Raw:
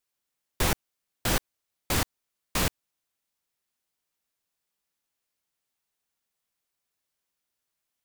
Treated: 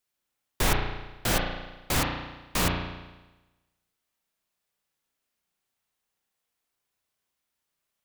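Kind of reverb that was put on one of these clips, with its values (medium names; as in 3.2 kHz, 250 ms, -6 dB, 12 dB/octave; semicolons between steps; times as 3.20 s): spring tank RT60 1.1 s, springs 34 ms, chirp 20 ms, DRR 0.5 dB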